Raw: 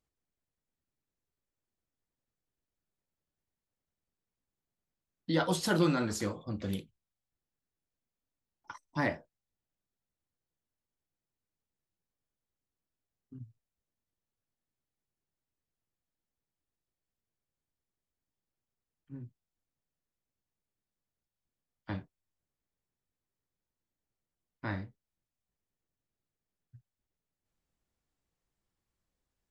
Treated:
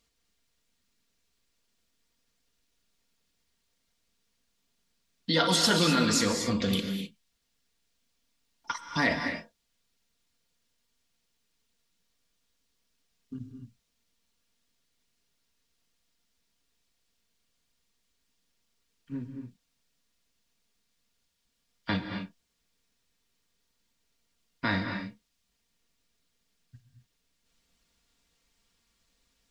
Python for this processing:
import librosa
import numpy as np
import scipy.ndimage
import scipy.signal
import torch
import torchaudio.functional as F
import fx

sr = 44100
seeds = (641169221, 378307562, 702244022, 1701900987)

p1 = fx.peak_eq(x, sr, hz=4100.0, db=10.5, octaves=2.2)
p2 = fx.notch(p1, sr, hz=780.0, q=12.0)
p3 = p2 + 0.48 * np.pad(p2, (int(4.3 * sr / 1000.0), 0))[:len(p2)]
p4 = fx.over_compress(p3, sr, threshold_db=-35.0, ratio=-1.0)
p5 = p3 + (p4 * librosa.db_to_amplitude(-1.5))
y = fx.rev_gated(p5, sr, seeds[0], gate_ms=280, shape='rising', drr_db=5.5)